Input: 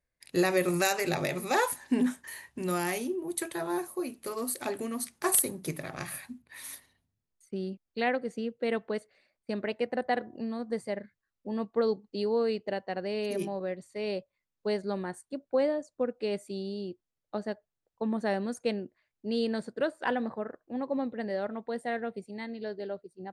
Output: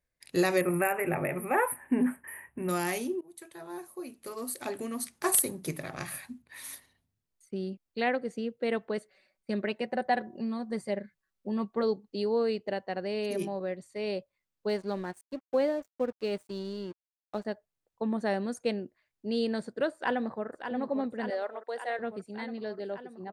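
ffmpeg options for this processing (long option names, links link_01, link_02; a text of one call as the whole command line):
ffmpeg -i in.wav -filter_complex "[0:a]asettb=1/sr,asplit=3[link_01][link_02][link_03];[link_01]atrim=end=0.614[link_04];[link_02]atrim=start=0.61:end=2.69,asetpts=PTS-STARTPTS,afade=type=in:duration=0.004:curve=qsin,afade=type=out:start_time=2.076:duration=0.004:curve=qsin,asuperstop=centerf=5000:order=8:qfactor=0.74[link_05];[link_03]atrim=start=2.686[link_06];[link_04][link_05]acrossfade=duration=0.004:curve1=hsin:curve2=qsin[link_07];[link_07][link_06]acrossfade=duration=0.004:curve1=qsin:curve2=hsin,asettb=1/sr,asplit=3[link_08][link_09][link_10];[link_08]atrim=end=8.974[link_11];[link_09]atrim=start=8.97:end=11.83,asetpts=PTS-STARTPTS,afade=type=in:duration=0.004:curve=qsin,afade=type=out:start_time=2.856:duration=0.004:curve=qsin,aecho=1:1:5.3:0.5,atrim=end_sample=126126[link_12];[link_10]atrim=start=11.826[link_13];[link_11][link_12]acrossfade=duration=0.004:curve1=hsin:curve2=qsin[link_14];[link_14][link_13]acrossfade=duration=0.004:curve1=qsin:curve2=hsin,asettb=1/sr,asplit=3[link_15][link_16][link_17];[link_15]atrim=end=14.694[link_18];[link_16]atrim=start=14.69:end=17.45,asetpts=PTS-STARTPTS,afade=type=in:duration=0.004:curve=qsin,afade=type=out:start_time=2.756:duration=0.004:curve=qsin,aeval=exprs='sgn(val(0))*max(abs(val(0))-0.00299,0)':channel_layout=same[link_19];[link_17]atrim=start=17.446[link_20];[link_18][link_19]acrossfade=duration=0.004:curve1=hsin:curve2=qsin[link_21];[link_21][link_20]acrossfade=duration=0.004:curve1=qsin:curve2=hsin,asplit=2[link_22][link_23];[link_23]afade=type=in:start_time=19.94:duration=0.01,afade=type=out:start_time=20.47:duration=0.01,aecho=0:1:580|1160|1740|2320|2900|3480|4060|4640|5220|5800|6380|6960:0.398107|0.29858|0.223935|0.167951|0.125964|0.0944727|0.0708545|0.0531409|0.0398557|0.0298918|0.0224188|0.0168141[link_24];[link_22][link_24]amix=inputs=2:normalize=0,asettb=1/sr,asplit=3[link_25][link_26][link_27];[link_25]atrim=end=21.304[link_28];[link_26]atrim=start=21.3:end=21.99,asetpts=PTS-STARTPTS,afade=type=in:duration=0.004:curve=qsin,afade=type=out:start_time=0.686:duration=0.004:curve=qsin,highpass=frequency=410:width=0.5412,highpass=frequency=410:width=1.3066[link_29];[link_27]atrim=start=21.986[link_30];[link_28][link_29]acrossfade=duration=0.004:curve1=hsin:curve2=qsin[link_31];[link_31][link_30]acrossfade=duration=0.004:curve1=qsin:curve2=hsin,asplit=2[link_32][link_33];[link_32]atrim=end=3.21,asetpts=PTS-STARTPTS,afade=type=out:start_time=3.206:duration=0.004:curve=hsin:silence=0.0944061[link_34];[link_33]atrim=start=3.21,asetpts=PTS-STARTPTS,afade=type=in:duration=1.94:silence=0.0944061[link_35];[link_34][link_35]concat=n=2:v=0:a=1" out.wav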